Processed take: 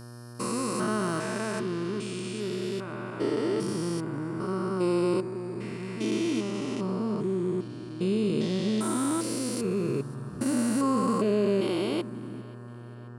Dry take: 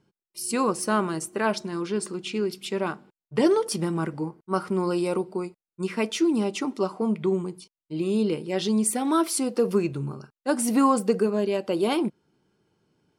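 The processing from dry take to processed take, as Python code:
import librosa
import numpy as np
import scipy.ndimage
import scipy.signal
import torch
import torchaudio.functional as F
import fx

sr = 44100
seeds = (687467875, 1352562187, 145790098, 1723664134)

p1 = fx.spec_steps(x, sr, hold_ms=400)
p2 = fx.dmg_buzz(p1, sr, base_hz=120.0, harmonics=15, level_db=-46.0, tilt_db=-6, odd_only=False)
p3 = fx.graphic_eq_31(p2, sr, hz=(160, 500, 800, 12500), db=(-4, -4, -8, -6))
p4 = p3 + fx.echo_feedback(p3, sr, ms=533, feedback_pct=57, wet_db=-23.0, dry=0)
y = p4 * 10.0 ** (2.5 / 20.0)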